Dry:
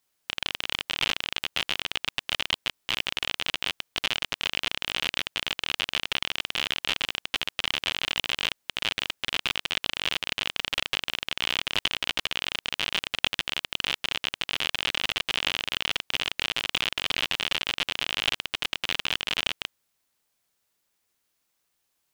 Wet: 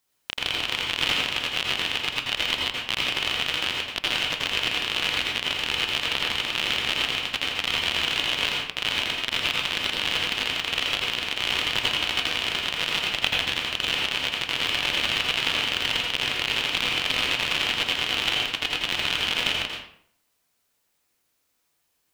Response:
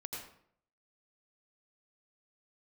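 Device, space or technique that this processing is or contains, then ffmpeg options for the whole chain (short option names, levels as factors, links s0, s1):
bathroom: -filter_complex "[1:a]atrim=start_sample=2205[s0];[0:a][s0]afir=irnorm=-1:irlink=0,volume=1.88"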